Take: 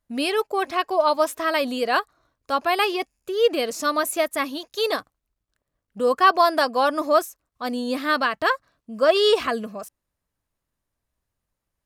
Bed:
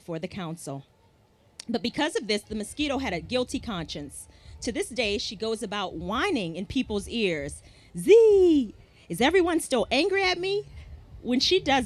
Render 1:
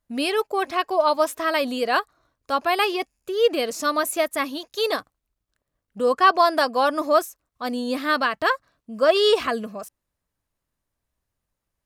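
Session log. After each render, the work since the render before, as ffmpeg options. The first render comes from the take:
ffmpeg -i in.wav -filter_complex "[0:a]asettb=1/sr,asplit=3[link_01][link_02][link_03];[link_01]atrim=end=6.024[link_04];[link_02]atrim=start=6.02:end=6.52,asetpts=PTS-STARTPTS,afade=type=in:duration=0.004:curve=qsin,afade=type=out:start_time=0.496:duration=0.004:curve=qsin,lowpass=11000[link_05];[link_03]atrim=start=6.516[link_06];[link_04][link_05]acrossfade=duration=0.004:curve1=hsin:curve2=qsin[link_07];[link_07][link_06]acrossfade=duration=0.004:curve1=qsin:curve2=hsin" out.wav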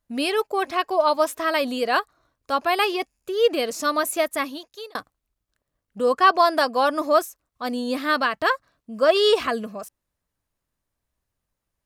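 ffmpeg -i in.wav -filter_complex "[0:a]asplit=2[link_01][link_02];[link_01]atrim=end=4.95,asetpts=PTS-STARTPTS,afade=type=out:start_time=4.36:duration=0.59[link_03];[link_02]atrim=start=4.95,asetpts=PTS-STARTPTS,afade=type=in:duration=0.004:curve=hsin[link_04];[link_03][link_04]concat=n=2:v=0:a=1" out.wav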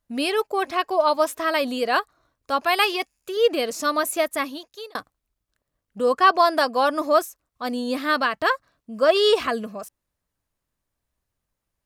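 ffmpeg -i in.wav -filter_complex "[0:a]asettb=1/sr,asplit=3[link_01][link_02][link_03];[link_01]atrim=end=2.634[link_04];[link_02]atrim=start=2.63:end=3.37,asetpts=PTS-STARTPTS,afade=type=in:duration=0.004:curve=qsin,afade=type=out:start_time=0.736:duration=0.004:curve=qsin,tiltshelf=frequency=810:gain=-4[link_05];[link_03]atrim=start=3.366[link_06];[link_04][link_05]acrossfade=duration=0.004:curve1=hsin:curve2=qsin[link_07];[link_07][link_06]acrossfade=duration=0.004:curve1=qsin:curve2=hsin" out.wav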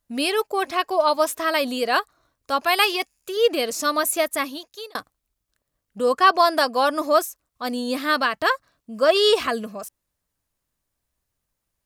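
ffmpeg -i in.wav -af "highshelf=frequency=3900:gain=5.5" out.wav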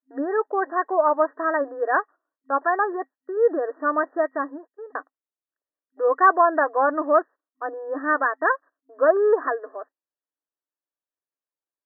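ffmpeg -i in.wav -af "agate=range=-15dB:threshold=-39dB:ratio=16:detection=peak,afftfilt=real='re*between(b*sr/4096,260,1900)':imag='im*between(b*sr/4096,260,1900)':win_size=4096:overlap=0.75" out.wav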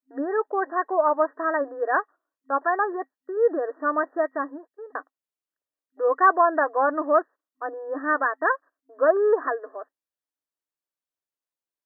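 ffmpeg -i in.wav -af "volume=-1.5dB" out.wav

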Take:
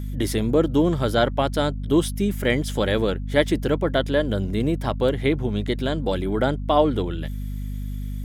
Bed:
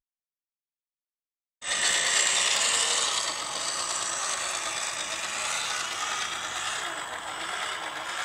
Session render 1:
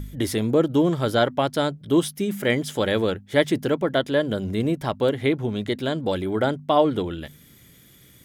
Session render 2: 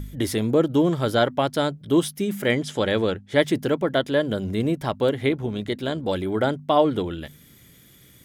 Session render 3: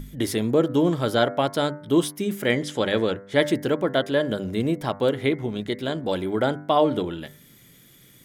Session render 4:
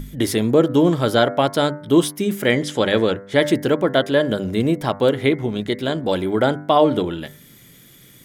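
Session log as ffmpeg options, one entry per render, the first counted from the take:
ffmpeg -i in.wav -af "bandreject=frequency=50:width_type=h:width=4,bandreject=frequency=100:width_type=h:width=4,bandreject=frequency=150:width_type=h:width=4,bandreject=frequency=200:width_type=h:width=4,bandreject=frequency=250:width_type=h:width=4" out.wav
ffmpeg -i in.wav -filter_complex "[0:a]asettb=1/sr,asplit=3[link_01][link_02][link_03];[link_01]atrim=end=2.524[link_04];[link_02]atrim=start=2.52:end=3.39,asetpts=PTS-STARTPTS,afade=type=in:duration=0.004:curve=qsin,afade=type=out:start_time=0.866:duration=0.004:curve=qsin,lowpass=8500[link_05];[link_03]atrim=start=3.386[link_06];[link_04][link_05]acrossfade=duration=0.004:curve1=hsin:curve2=qsin[link_07];[link_07][link_06]acrossfade=duration=0.004:curve1=qsin:curve2=hsin,asettb=1/sr,asplit=3[link_08][link_09][link_10];[link_08]atrim=end=5.294[link_11];[link_09]atrim=start=5.29:end=6.09,asetpts=PTS-STARTPTS,afade=type=in:duration=0.004:curve=qsin,afade=type=out:start_time=0.796:duration=0.004:curve=qsin,tremolo=f=71:d=0.333[link_12];[link_10]atrim=start=6.086[link_13];[link_11][link_12]acrossfade=duration=0.004:curve1=hsin:curve2=qsin[link_14];[link_14][link_13]acrossfade=duration=0.004:curve1=qsin:curve2=hsin" out.wav
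ffmpeg -i in.wav -af "equalizer=frequency=68:width=2.2:gain=-13,bandreject=frequency=98.73:width_type=h:width=4,bandreject=frequency=197.46:width_type=h:width=4,bandreject=frequency=296.19:width_type=h:width=4,bandreject=frequency=394.92:width_type=h:width=4,bandreject=frequency=493.65:width_type=h:width=4,bandreject=frequency=592.38:width_type=h:width=4,bandreject=frequency=691.11:width_type=h:width=4,bandreject=frequency=789.84:width_type=h:width=4,bandreject=frequency=888.57:width_type=h:width=4,bandreject=frequency=987.3:width_type=h:width=4,bandreject=frequency=1086.03:width_type=h:width=4,bandreject=frequency=1184.76:width_type=h:width=4,bandreject=frequency=1283.49:width_type=h:width=4,bandreject=frequency=1382.22:width_type=h:width=4,bandreject=frequency=1480.95:width_type=h:width=4,bandreject=frequency=1579.68:width_type=h:width=4,bandreject=frequency=1678.41:width_type=h:width=4,bandreject=frequency=1777.14:width_type=h:width=4,bandreject=frequency=1875.87:width_type=h:width=4,bandreject=frequency=1974.6:width_type=h:width=4,bandreject=frequency=2073.33:width_type=h:width=4,bandreject=frequency=2172.06:width_type=h:width=4" out.wav
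ffmpeg -i in.wav -af "volume=5dB,alimiter=limit=-3dB:level=0:latency=1" out.wav

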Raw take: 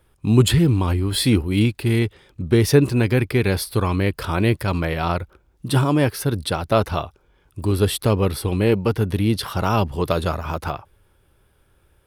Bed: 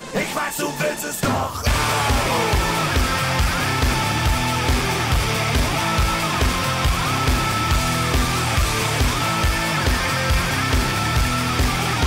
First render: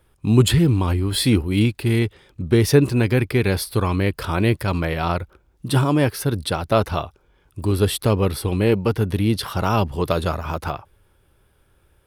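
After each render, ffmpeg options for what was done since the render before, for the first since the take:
ffmpeg -i in.wav -af anull out.wav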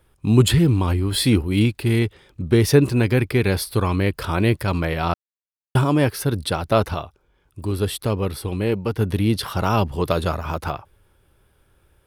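ffmpeg -i in.wav -filter_complex "[0:a]asplit=5[link_01][link_02][link_03][link_04][link_05];[link_01]atrim=end=5.14,asetpts=PTS-STARTPTS,afade=type=out:start_time=5.136:duration=0.004:curve=hsin[link_06];[link_02]atrim=start=5.14:end=5.75,asetpts=PTS-STARTPTS,volume=0[link_07];[link_03]atrim=start=5.75:end=6.942,asetpts=PTS-STARTPTS,afade=type=in:duration=0.004:curve=hsin[link_08];[link_04]atrim=start=6.938:end=8.992,asetpts=PTS-STARTPTS,volume=-4dB[link_09];[link_05]atrim=start=8.988[link_10];[link_06][link_07][link_08]concat=n=3:v=0:a=1[link_11];[link_11][link_09]acrossfade=duration=0.004:curve1=hsin:curve2=hsin[link_12];[link_12][link_10]acrossfade=duration=0.004:curve1=hsin:curve2=hsin" out.wav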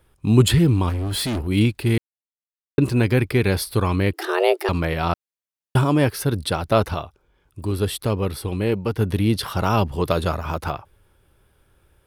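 ffmpeg -i in.wav -filter_complex "[0:a]asettb=1/sr,asplit=3[link_01][link_02][link_03];[link_01]atrim=end=0.894[link_04];[link_02]atrim=start=0.89:end=1.47,asetpts=PTS-STARTPTS,afade=type=in:duration=0.004:curve=qsin,afade=type=out:start_time=0.576:duration=0.004:curve=qsin,asoftclip=type=hard:threshold=-22dB[link_05];[link_03]atrim=start=1.466[link_06];[link_04][link_05]acrossfade=duration=0.004:curve1=hsin:curve2=qsin[link_07];[link_07][link_06]acrossfade=duration=0.004:curve1=qsin:curve2=hsin,asettb=1/sr,asplit=3[link_08][link_09][link_10];[link_08]atrim=end=4.134[link_11];[link_09]atrim=start=4.13:end=4.69,asetpts=PTS-STARTPTS,afade=type=in:duration=0.004:curve=qsin,afade=type=out:start_time=0.556:duration=0.004:curve=qsin,afreqshift=280[link_12];[link_10]atrim=start=4.686[link_13];[link_11][link_12]acrossfade=duration=0.004:curve1=hsin:curve2=qsin[link_14];[link_14][link_13]acrossfade=duration=0.004:curve1=qsin:curve2=hsin,asplit=3[link_15][link_16][link_17];[link_15]atrim=end=1.98,asetpts=PTS-STARTPTS,afade=type=out:start_time=1.976:duration=0.004:curve=hsin[link_18];[link_16]atrim=start=1.98:end=2.78,asetpts=PTS-STARTPTS,volume=0[link_19];[link_17]atrim=start=2.78,asetpts=PTS-STARTPTS,afade=type=in:duration=0.004:curve=hsin[link_20];[link_18][link_19][link_20]concat=n=3:v=0:a=1" out.wav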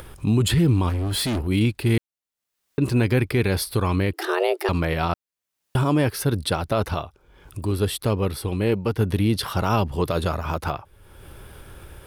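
ffmpeg -i in.wav -af "alimiter=limit=-11.5dB:level=0:latency=1:release=60,acompressor=mode=upward:threshold=-26dB:ratio=2.5" out.wav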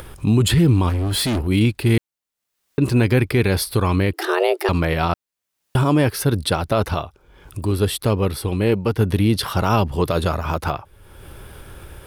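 ffmpeg -i in.wav -af "volume=3.5dB" out.wav

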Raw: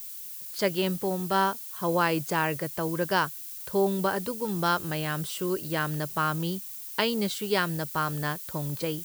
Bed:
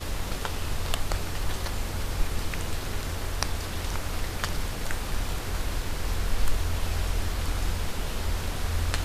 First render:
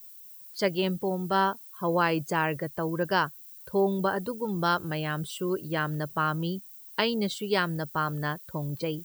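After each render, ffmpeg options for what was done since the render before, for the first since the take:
ffmpeg -i in.wav -af "afftdn=noise_reduction=13:noise_floor=-40" out.wav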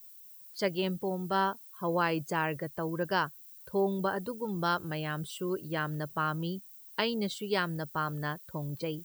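ffmpeg -i in.wav -af "volume=-4dB" out.wav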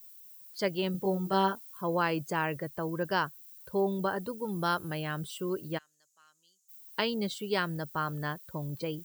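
ffmpeg -i in.wav -filter_complex "[0:a]asettb=1/sr,asplit=3[link_01][link_02][link_03];[link_01]atrim=end=0.924[link_04];[link_02]atrim=start=0.92:end=1.81,asetpts=PTS-STARTPTS,afade=type=in:duration=0.004:curve=qsin,afade=type=out:start_time=0.886:duration=0.004:curve=qsin,asplit=2[link_05][link_06];[link_06]adelay=21,volume=-2dB[link_07];[link_05][link_07]amix=inputs=2:normalize=0,atrim=end_sample=39249[link_08];[link_03]atrim=start=1.806[link_09];[link_04][link_08]acrossfade=duration=0.004:curve1=hsin:curve2=qsin[link_10];[link_10][link_09]acrossfade=duration=0.004:curve1=qsin:curve2=hsin,asettb=1/sr,asplit=3[link_11][link_12][link_13];[link_11]atrim=end=4.404[link_14];[link_12]atrim=start=4.4:end=5.03,asetpts=PTS-STARTPTS,afade=type=in:duration=0.004:curve=qsin,afade=type=out:start_time=0.626:duration=0.004:curve=qsin,equalizer=frequency=11000:width=5.8:gain=11.5[link_15];[link_13]atrim=start=5.026[link_16];[link_14][link_15]acrossfade=duration=0.004:curve1=hsin:curve2=qsin[link_17];[link_17][link_16]acrossfade=duration=0.004:curve1=qsin:curve2=hsin,asplit=3[link_18][link_19][link_20];[link_18]afade=type=out:start_time=5.77:duration=0.02[link_21];[link_19]bandpass=frequency=6800:width_type=q:width=6.8,afade=type=in:start_time=5.77:duration=0.02,afade=type=out:start_time=6.68:duration=0.02[link_22];[link_20]afade=type=in:start_time=6.68:duration=0.02[link_23];[link_21][link_22][link_23]amix=inputs=3:normalize=0" out.wav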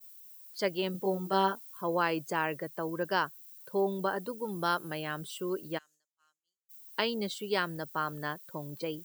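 ffmpeg -i in.wav -af "agate=range=-33dB:threshold=-53dB:ratio=3:detection=peak,highpass=210" out.wav

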